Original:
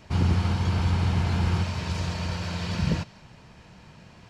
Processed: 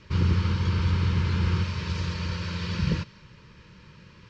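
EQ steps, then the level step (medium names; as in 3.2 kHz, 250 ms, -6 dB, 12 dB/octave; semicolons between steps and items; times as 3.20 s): Butterworth band-stop 730 Hz, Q 1.8; low-pass 6 kHz 24 dB/octave; peaking EQ 250 Hz -8.5 dB 0.22 oct; 0.0 dB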